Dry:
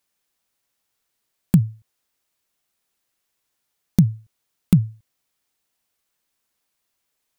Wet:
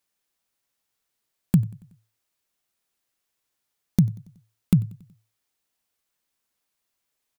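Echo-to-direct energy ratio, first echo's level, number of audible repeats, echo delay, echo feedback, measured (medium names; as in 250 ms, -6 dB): -21.5 dB, -23.0 dB, 3, 93 ms, 53%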